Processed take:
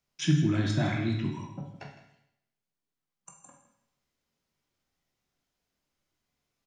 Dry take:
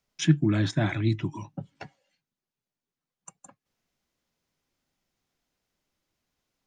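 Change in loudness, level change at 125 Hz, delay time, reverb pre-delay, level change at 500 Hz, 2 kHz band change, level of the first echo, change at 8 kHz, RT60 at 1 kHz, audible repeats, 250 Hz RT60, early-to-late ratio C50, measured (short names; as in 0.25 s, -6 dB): -2.5 dB, -2.0 dB, 0.16 s, 14 ms, -2.5 dB, -2.0 dB, -14.5 dB, -2.5 dB, 0.80 s, 1, 0.75 s, 4.5 dB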